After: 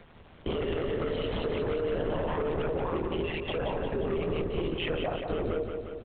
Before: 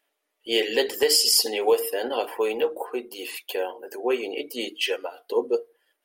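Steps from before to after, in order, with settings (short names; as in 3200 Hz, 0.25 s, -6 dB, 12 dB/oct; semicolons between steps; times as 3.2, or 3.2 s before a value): in parallel at -10 dB: wavefolder -22 dBFS; on the sum: tilt -3.5 dB/oct; sample leveller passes 3; added noise pink -60 dBFS; high shelf 3100 Hz -7.5 dB; LPC vocoder at 8 kHz whisper; AM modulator 160 Hz, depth 50%; limiter -23.5 dBFS, peak gain reduction 21 dB; feedback echo 0.177 s, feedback 52%, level -6.5 dB; three-band squash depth 40%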